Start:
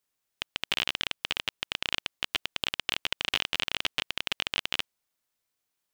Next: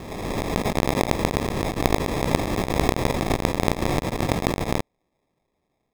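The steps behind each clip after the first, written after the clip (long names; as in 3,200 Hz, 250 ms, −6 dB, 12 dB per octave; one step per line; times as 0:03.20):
peak hold with a rise ahead of every peak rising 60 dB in 1.80 s
decimation without filtering 30×
high-shelf EQ 8,900 Hz −4 dB
level +4.5 dB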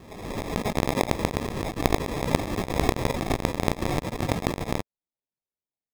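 spectral dynamics exaggerated over time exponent 1.5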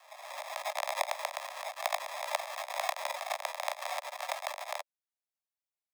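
Butterworth high-pass 580 Hz 96 dB per octave
level −4 dB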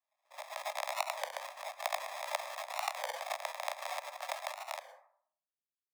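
noise gate −41 dBFS, range −33 dB
on a send at −12 dB: convolution reverb RT60 0.65 s, pre-delay 97 ms
on the sum: wow of a warped record 33 1/3 rpm, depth 160 cents
level −3 dB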